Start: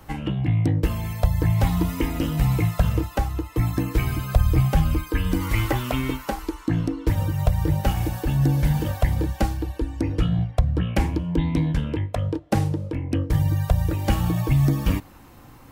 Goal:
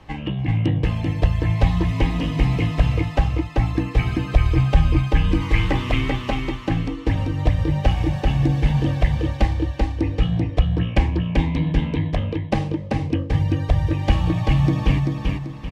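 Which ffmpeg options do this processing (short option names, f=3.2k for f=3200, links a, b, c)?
-filter_complex "[0:a]lowpass=4.7k,equalizer=f=2.7k:t=o:w=1.2:g=4,bandreject=f=1.4k:w=6.2,asplit=2[a][b];[b]aecho=0:1:388|776|1164|1552|1940:0.708|0.269|0.102|0.0388|0.0148[c];[a][c]amix=inputs=2:normalize=0"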